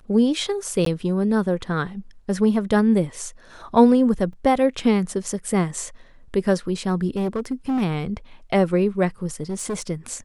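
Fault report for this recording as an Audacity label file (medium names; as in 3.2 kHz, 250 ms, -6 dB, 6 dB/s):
0.850000	0.860000	dropout 13 ms
4.330000	4.330000	dropout 2.7 ms
7.160000	7.830000	clipped -19.5 dBFS
9.420000	9.820000	clipped -22.5 dBFS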